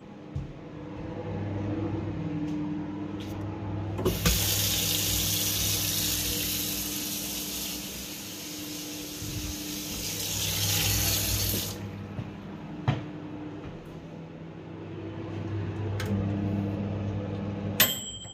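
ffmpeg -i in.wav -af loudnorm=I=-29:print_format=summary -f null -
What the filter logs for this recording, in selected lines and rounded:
Input Integrated:    -29.2 LUFS
Input True Peak:      -6.3 dBTP
Input LRA:             8.1 LU
Input Threshold:     -39.6 LUFS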